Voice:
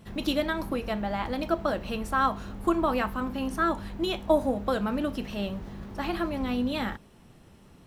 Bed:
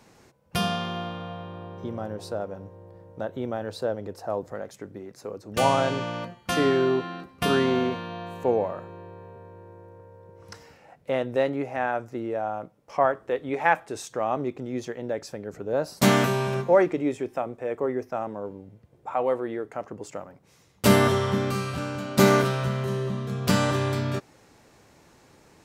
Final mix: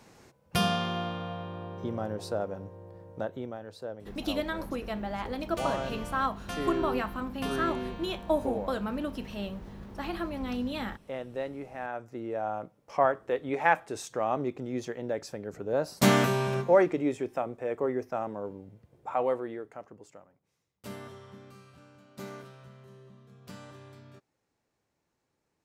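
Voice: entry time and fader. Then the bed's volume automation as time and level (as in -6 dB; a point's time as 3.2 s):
4.00 s, -4.5 dB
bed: 3.17 s -0.5 dB
3.61 s -11 dB
11.77 s -11 dB
12.51 s -2.5 dB
19.22 s -2.5 dB
20.83 s -24.5 dB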